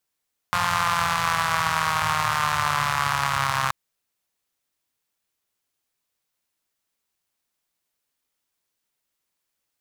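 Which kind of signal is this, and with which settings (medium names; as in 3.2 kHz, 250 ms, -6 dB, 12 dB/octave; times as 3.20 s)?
four-cylinder engine model, changing speed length 3.18 s, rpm 5300, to 4000, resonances 110/1100 Hz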